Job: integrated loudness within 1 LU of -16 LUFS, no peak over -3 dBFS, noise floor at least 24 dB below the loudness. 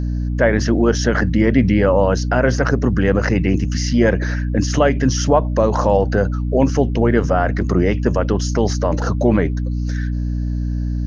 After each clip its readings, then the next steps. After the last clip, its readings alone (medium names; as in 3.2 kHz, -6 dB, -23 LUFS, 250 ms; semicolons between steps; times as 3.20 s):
hum 60 Hz; highest harmonic 300 Hz; hum level -18 dBFS; loudness -17.5 LUFS; peak level -1.5 dBFS; loudness target -16.0 LUFS
-> de-hum 60 Hz, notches 5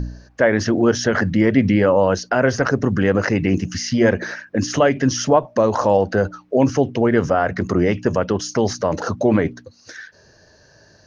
hum not found; loudness -18.5 LUFS; peak level -2.0 dBFS; loudness target -16.0 LUFS
-> trim +2.5 dB; peak limiter -3 dBFS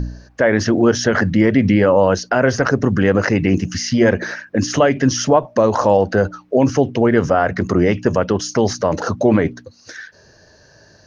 loudness -16.5 LUFS; peak level -3.0 dBFS; noise floor -50 dBFS